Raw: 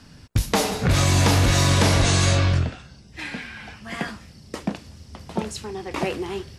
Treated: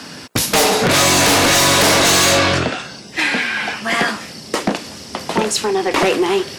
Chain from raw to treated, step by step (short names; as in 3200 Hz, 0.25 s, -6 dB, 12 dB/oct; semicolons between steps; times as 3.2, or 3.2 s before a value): HPF 300 Hz 12 dB/oct; in parallel at +1.5 dB: compressor, threshold -35 dBFS, peak gain reduction 16.5 dB; on the sum: sine folder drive 15 dB, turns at -2.5 dBFS; gain -6.5 dB